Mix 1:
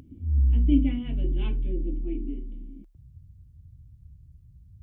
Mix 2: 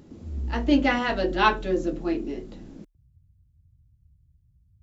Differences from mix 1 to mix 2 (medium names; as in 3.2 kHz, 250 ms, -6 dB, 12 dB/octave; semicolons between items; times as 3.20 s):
speech: remove cascade formant filter i; background -10.0 dB